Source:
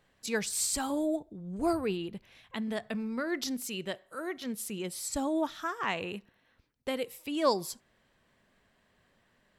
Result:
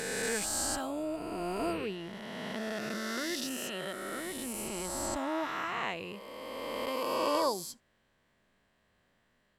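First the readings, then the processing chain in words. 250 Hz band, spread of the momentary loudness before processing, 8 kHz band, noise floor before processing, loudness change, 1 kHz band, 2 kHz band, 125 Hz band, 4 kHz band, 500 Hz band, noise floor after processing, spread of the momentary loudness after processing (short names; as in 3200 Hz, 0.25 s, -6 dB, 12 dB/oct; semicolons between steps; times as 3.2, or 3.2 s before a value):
-4.0 dB, 12 LU, -0.5 dB, -70 dBFS, -1.5 dB, +1.0 dB, +1.0 dB, -2.5 dB, +0.5 dB, -1.0 dB, -73 dBFS, 10 LU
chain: spectral swells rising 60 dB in 2.97 s; gain -7 dB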